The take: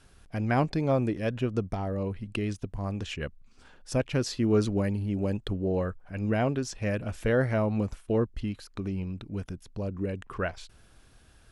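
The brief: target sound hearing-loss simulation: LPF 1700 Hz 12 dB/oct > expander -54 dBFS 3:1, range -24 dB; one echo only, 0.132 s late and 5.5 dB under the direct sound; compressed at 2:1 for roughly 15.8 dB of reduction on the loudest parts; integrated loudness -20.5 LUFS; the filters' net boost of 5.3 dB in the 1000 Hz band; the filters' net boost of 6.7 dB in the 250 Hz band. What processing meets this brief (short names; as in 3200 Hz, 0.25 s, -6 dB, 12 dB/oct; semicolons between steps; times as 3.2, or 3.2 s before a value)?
bell 250 Hz +8 dB; bell 1000 Hz +7.5 dB; compressor 2:1, threshold -46 dBFS; LPF 1700 Hz 12 dB/oct; echo 0.132 s -5.5 dB; expander -54 dBFS 3:1, range -24 dB; gain +18 dB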